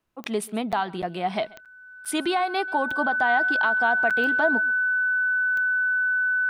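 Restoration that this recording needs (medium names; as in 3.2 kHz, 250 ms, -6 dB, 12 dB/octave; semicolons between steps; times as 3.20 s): de-click; band-stop 1.5 kHz, Q 30; interpolate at 0.72/1.02/1.65/2.05/4.10 s, 6.9 ms; inverse comb 135 ms -23 dB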